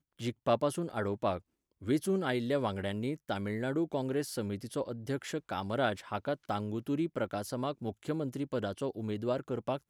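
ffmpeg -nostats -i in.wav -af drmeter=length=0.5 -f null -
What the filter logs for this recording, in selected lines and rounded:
Channel 1: DR: 13.0
Overall DR: 13.0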